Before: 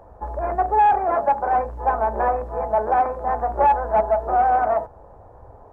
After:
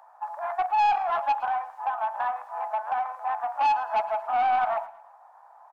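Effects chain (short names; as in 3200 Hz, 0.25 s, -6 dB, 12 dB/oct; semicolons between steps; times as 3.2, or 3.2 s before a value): steep high-pass 750 Hz 48 dB/oct; 1.46–3.57 compressor 6:1, threshold -23 dBFS, peak gain reduction 7 dB; soft clip -18 dBFS, distortion -12 dB; feedback echo 0.111 s, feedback 42%, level -18.5 dB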